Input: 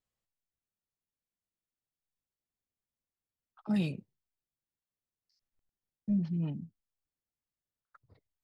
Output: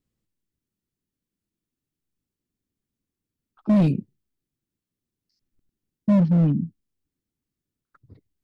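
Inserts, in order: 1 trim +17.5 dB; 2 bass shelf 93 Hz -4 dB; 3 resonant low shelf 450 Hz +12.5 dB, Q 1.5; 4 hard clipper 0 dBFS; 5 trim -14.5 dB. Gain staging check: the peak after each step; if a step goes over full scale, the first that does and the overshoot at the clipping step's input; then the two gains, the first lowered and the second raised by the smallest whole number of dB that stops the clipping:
-3.5 dBFS, -4.0 dBFS, +8.5 dBFS, 0.0 dBFS, -14.5 dBFS; step 3, 8.5 dB; step 1 +8.5 dB, step 5 -5.5 dB

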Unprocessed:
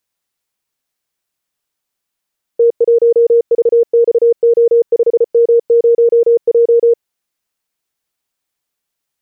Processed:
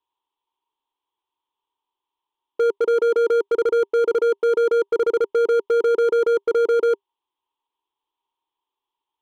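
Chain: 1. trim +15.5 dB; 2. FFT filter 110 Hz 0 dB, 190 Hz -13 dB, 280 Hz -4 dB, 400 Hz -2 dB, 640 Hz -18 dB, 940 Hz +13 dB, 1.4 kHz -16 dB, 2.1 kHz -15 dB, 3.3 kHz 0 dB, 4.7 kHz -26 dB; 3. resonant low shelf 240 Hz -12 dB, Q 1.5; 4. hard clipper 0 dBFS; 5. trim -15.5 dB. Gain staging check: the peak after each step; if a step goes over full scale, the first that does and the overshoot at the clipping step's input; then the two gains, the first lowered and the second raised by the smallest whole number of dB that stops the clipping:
+10.0 dBFS, +4.0 dBFS, +6.5 dBFS, 0.0 dBFS, -15.5 dBFS; step 1, 6.5 dB; step 1 +8.5 dB, step 5 -8.5 dB

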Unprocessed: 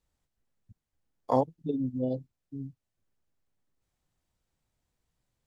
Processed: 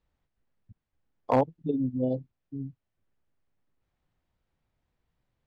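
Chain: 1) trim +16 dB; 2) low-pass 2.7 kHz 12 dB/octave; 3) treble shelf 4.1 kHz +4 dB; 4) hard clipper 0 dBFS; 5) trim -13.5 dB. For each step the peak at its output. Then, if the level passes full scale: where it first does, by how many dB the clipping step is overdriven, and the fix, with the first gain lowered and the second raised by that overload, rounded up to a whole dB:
+4.5 dBFS, +4.5 dBFS, +4.5 dBFS, 0.0 dBFS, -13.5 dBFS; step 1, 4.5 dB; step 1 +11 dB, step 5 -8.5 dB

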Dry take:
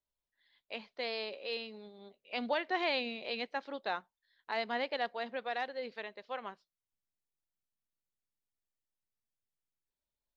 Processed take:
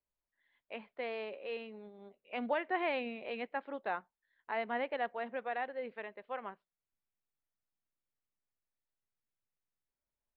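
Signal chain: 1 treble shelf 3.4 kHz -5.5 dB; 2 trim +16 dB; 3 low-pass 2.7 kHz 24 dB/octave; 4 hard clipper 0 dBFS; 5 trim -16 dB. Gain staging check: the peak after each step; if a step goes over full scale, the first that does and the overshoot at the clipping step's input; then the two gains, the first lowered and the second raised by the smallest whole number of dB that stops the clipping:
-21.5 dBFS, -5.5 dBFS, -5.5 dBFS, -5.5 dBFS, -21.5 dBFS; nothing clips

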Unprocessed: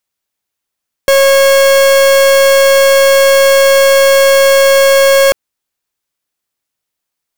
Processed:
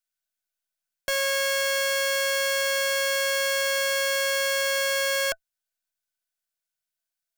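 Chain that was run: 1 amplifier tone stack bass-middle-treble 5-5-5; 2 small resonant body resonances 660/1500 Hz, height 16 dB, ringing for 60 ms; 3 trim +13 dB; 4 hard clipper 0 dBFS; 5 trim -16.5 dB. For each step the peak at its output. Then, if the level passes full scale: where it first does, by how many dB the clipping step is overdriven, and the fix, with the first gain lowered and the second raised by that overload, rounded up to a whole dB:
-8.5 dBFS, -7.5 dBFS, +5.5 dBFS, 0.0 dBFS, -16.5 dBFS; step 3, 5.5 dB; step 3 +7 dB, step 5 -10.5 dB

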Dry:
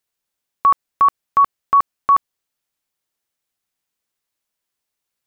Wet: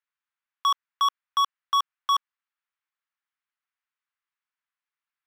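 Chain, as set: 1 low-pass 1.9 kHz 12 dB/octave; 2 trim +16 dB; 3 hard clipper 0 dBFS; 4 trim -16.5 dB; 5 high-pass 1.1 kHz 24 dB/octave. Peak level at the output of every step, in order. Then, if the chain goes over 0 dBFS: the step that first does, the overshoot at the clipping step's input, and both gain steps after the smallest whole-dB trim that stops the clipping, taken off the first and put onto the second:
-8.0 dBFS, +8.0 dBFS, 0.0 dBFS, -16.5 dBFS, -15.5 dBFS; step 2, 8.0 dB; step 2 +8 dB, step 4 -8.5 dB

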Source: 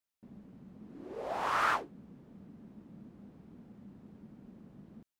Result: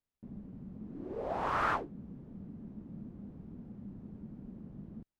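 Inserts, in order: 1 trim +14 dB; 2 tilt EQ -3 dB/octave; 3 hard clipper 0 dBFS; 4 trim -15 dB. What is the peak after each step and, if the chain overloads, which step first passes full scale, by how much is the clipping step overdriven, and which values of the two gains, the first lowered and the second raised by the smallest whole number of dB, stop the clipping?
-3.5 dBFS, -4.0 dBFS, -4.0 dBFS, -19.0 dBFS; nothing clips

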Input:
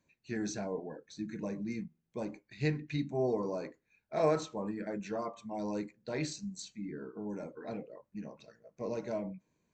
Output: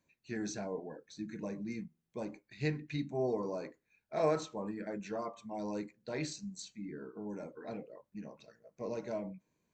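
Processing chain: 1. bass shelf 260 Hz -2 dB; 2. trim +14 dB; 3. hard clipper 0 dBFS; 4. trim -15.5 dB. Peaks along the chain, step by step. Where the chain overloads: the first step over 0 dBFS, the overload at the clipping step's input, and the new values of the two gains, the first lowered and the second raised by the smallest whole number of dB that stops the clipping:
-17.5 dBFS, -3.5 dBFS, -3.5 dBFS, -19.0 dBFS; nothing clips

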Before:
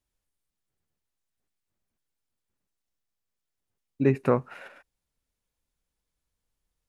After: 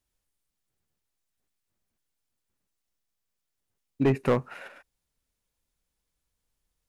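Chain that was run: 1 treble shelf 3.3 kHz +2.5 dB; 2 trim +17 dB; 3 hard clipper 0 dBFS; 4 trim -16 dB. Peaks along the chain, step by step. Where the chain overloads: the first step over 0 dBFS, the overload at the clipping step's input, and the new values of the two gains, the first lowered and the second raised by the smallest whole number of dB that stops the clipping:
-9.0 dBFS, +8.0 dBFS, 0.0 dBFS, -16.0 dBFS; step 2, 8.0 dB; step 2 +9 dB, step 4 -8 dB

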